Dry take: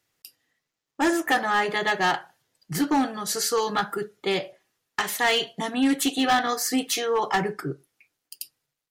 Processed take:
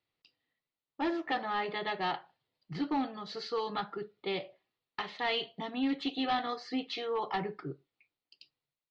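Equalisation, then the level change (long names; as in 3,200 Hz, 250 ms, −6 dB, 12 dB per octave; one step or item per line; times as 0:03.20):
elliptic low-pass filter 4,300 Hz, stop band 80 dB
parametric band 1,600 Hz −9 dB 0.33 octaves
−8.5 dB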